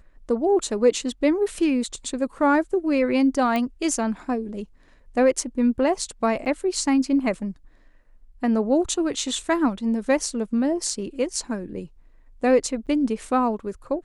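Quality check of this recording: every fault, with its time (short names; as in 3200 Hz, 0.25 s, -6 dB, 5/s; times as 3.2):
3.56 pop -13 dBFS
6.45–6.46 gap 9.1 ms
12.86–12.87 gap 8 ms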